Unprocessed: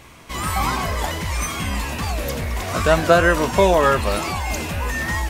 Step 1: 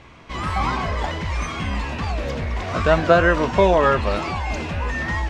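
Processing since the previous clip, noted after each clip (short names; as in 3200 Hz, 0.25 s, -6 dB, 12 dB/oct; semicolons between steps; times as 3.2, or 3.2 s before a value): air absorption 150 m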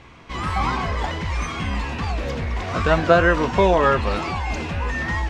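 notch 610 Hz, Q 12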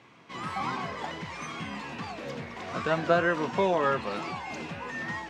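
HPF 130 Hz 24 dB/oct; gain -8.5 dB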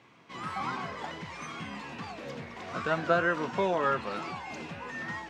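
dynamic EQ 1400 Hz, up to +5 dB, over -46 dBFS, Q 4.8; gain -3 dB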